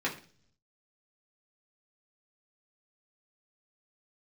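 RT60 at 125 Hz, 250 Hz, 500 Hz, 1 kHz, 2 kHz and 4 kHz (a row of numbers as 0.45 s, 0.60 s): 1.0 s, 0.70 s, 0.50 s, 0.40 s, 0.40 s, 0.50 s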